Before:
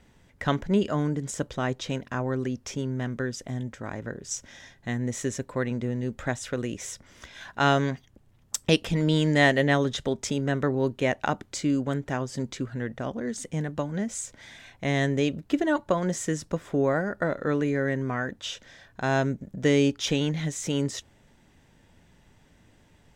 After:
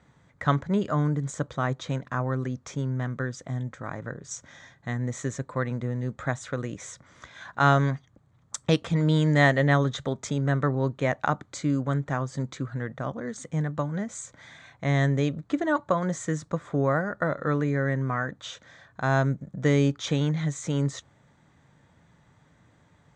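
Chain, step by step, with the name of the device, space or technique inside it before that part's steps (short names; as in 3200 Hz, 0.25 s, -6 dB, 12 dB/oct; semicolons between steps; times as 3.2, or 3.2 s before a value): car door speaker (speaker cabinet 80–7400 Hz, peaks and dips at 140 Hz +6 dB, 230 Hz -4 dB, 380 Hz -5 dB, 1200 Hz +7 dB, 2800 Hz -10 dB, 5200 Hz -9 dB)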